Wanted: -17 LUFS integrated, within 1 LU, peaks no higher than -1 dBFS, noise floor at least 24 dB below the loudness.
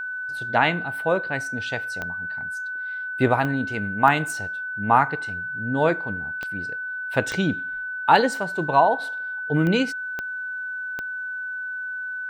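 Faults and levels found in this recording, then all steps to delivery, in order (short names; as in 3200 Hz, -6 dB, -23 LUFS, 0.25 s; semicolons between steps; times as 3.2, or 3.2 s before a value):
clicks 8; steady tone 1500 Hz; tone level -28 dBFS; loudness -24.0 LUFS; peak -3.0 dBFS; loudness target -17.0 LUFS
-> de-click; notch 1500 Hz, Q 30; gain +7 dB; limiter -1 dBFS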